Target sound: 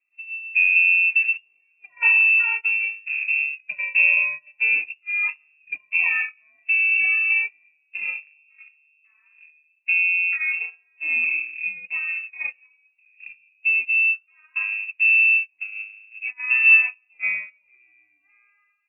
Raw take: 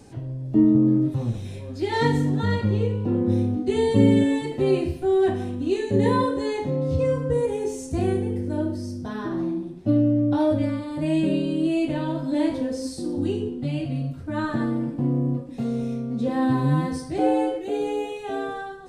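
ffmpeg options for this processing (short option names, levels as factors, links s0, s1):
-af "equalizer=f=140:t=o:w=0.54:g=13,agate=range=0.0355:threshold=0.112:ratio=16:detection=peak,lowpass=f=2400:t=q:w=0.5098,lowpass=f=2400:t=q:w=0.6013,lowpass=f=2400:t=q:w=0.9,lowpass=f=2400:t=q:w=2.563,afreqshift=-2800,volume=0.668"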